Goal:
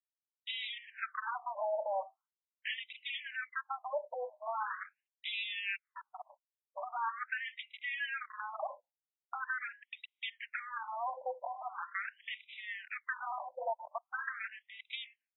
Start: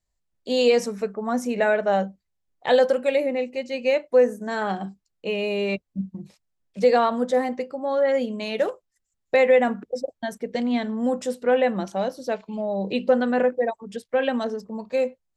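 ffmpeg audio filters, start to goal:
-filter_complex "[0:a]agate=range=-33dB:threshold=-43dB:ratio=3:detection=peak,acompressor=threshold=-32dB:ratio=16,aeval=exprs='0.0188*(abs(mod(val(0)/0.0188+3,4)-2)-1)':c=same,asplit=2[a][b];[b]highpass=f=720:p=1,volume=7dB,asoftclip=type=tanh:threshold=-34.5dB[c];[a][c]amix=inputs=2:normalize=0,lowpass=f=6.6k:p=1,volume=-6dB,afftfilt=real='re*between(b*sr/1024,700*pow(2800/700,0.5+0.5*sin(2*PI*0.42*pts/sr))/1.41,700*pow(2800/700,0.5+0.5*sin(2*PI*0.42*pts/sr))*1.41)':imag='im*between(b*sr/1024,700*pow(2800/700,0.5+0.5*sin(2*PI*0.42*pts/sr))/1.41,700*pow(2800/700,0.5+0.5*sin(2*PI*0.42*pts/sr))*1.41)':win_size=1024:overlap=0.75,volume=9dB"

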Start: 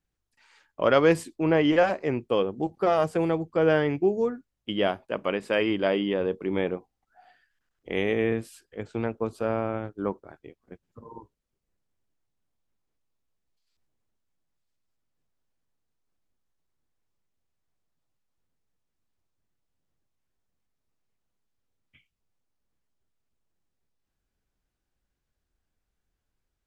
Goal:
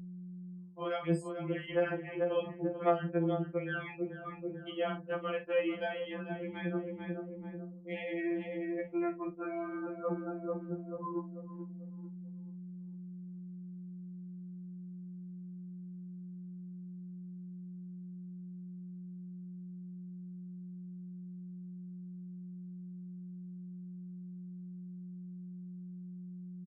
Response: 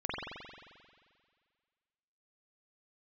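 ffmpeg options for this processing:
-filter_complex "[0:a]afftfilt=real='re*gte(hypot(re,im),0.0158)':imag='im*gte(hypot(re,im),0.0158)':win_size=1024:overlap=0.75,asplit=2[a][b];[b]adelay=440,lowpass=f=1k:p=1,volume=-11dB,asplit=2[c][d];[d]adelay=440,lowpass=f=1k:p=1,volume=0.44,asplit=2[e][f];[f]adelay=440,lowpass=f=1k:p=1,volume=0.44,asplit=2[g][h];[h]adelay=440,lowpass=f=1k:p=1,volume=0.44,asplit=2[i][j];[j]adelay=440,lowpass=f=1k:p=1,volume=0.44[k];[c][e][g][i][k]amix=inputs=5:normalize=0[l];[a][l]amix=inputs=2:normalize=0,alimiter=limit=-15dB:level=0:latency=1:release=356,equalizer=f=810:w=2.8:g=-3,aeval=exprs='val(0)+0.00447*(sin(2*PI*60*n/s)+sin(2*PI*2*60*n/s)/2+sin(2*PI*3*60*n/s)/3+sin(2*PI*4*60*n/s)/4+sin(2*PI*5*60*n/s)/5)':c=same,areverse,acompressor=threshold=-37dB:ratio=10,areverse,anlmdn=0.000631,highshelf=f=2.3k:g=3.5,asplit=2[m][n];[n]adelay=46,volume=-12dB[o];[m][o]amix=inputs=2:normalize=0,acrossover=split=2600[p][q];[q]acompressor=threshold=-59dB:ratio=4:attack=1:release=60[r];[p][r]amix=inputs=2:normalize=0,highpass=f=46:p=1,afftfilt=real='re*2.83*eq(mod(b,8),0)':imag='im*2.83*eq(mod(b,8),0)':win_size=2048:overlap=0.75,volume=9dB"

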